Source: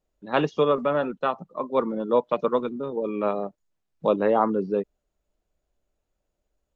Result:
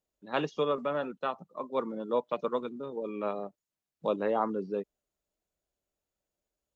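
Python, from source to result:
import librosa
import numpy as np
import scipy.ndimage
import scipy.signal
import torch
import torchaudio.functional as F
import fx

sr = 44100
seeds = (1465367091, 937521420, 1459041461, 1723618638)

y = fx.highpass(x, sr, hz=98.0, slope=6)
y = fx.high_shelf(y, sr, hz=3700.0, db=7.0)
y = y * 10.0 ** (-8.0 / 20.0)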